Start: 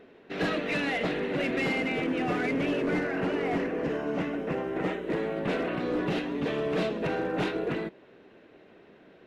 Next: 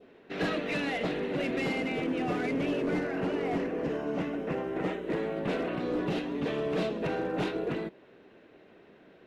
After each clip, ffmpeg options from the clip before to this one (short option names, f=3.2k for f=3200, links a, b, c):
-af "adynamicequalizer=threshold=0.00794:dfrequency=1800:dqfactor=1.1:tfrequency=1800:tqfactor=1.1:attack=5:release=100:ratio=0.375:range=2:mode=cutabove:tftype=bell,volume=-1.5dB"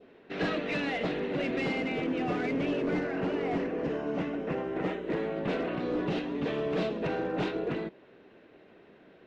-af "lowpass=5.9k"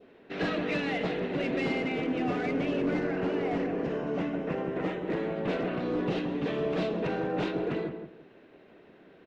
-filter_complex "[0:a]asplit=2[a][b];[b]adelay=172,lowpass=f=1k:p=1,volume=-6dB,asplit=2[c][d];[d]adelay=172,lowpass=f=1k:p=1,volume=0.27,asplit=2[e][f];[f]adelay=172,lowpass=f=1k:p=1,volume=0.27[g];[a][c][e][g]amix=inputs=4:normalize=0"